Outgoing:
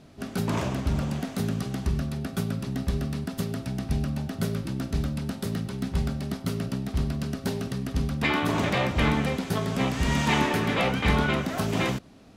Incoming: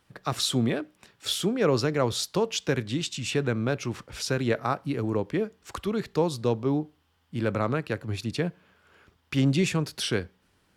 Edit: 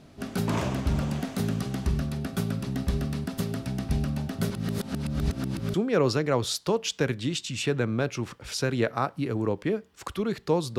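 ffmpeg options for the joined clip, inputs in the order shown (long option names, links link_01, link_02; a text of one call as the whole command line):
ffmpeg -i cue0.wav -i cue1.wav -filter_complex "[0:a]apad=whole_dur=10.78,atrim=end=10.78,asplit=2[link_01][link_02];[link_01]atrim=end=4.502[link_03];[link_02]atrim=start=4.498:end=5.742,asetpts=PTS-STARTPTS,areverse[link_04];[1:a]atrim=start=1.418:end=6.46[link_05];[link_03][link_04]acrossfade=duration=0.004:curve1=hsin:curve2=hsin[link_06];[link_06][link_05]acrossfade=duration=0.004:curve1=hsin:curve2=hsin" out.wav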